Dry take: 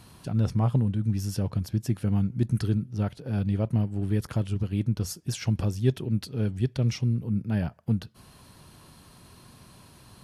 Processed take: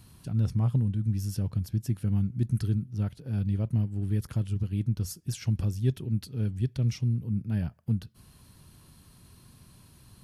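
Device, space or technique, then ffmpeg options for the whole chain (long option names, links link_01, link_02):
smiley-face EQ: -af "lowshelf=frequency=180:gain=8,equalizer=frequency=690:width_type=o:width=1.6:gain=-4.5,highshelf=frequency=9900:gain=9,volume=-6.5dB"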